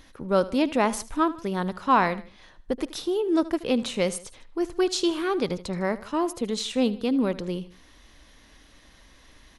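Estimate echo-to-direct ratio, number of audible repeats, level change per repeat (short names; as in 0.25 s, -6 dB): -16.5 dB, 2, -6.0 dB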